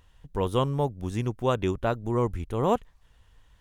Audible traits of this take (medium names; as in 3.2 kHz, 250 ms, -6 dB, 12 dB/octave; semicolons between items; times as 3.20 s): noise floor -61 dBFS; spectral tilt -6.5 dB/octave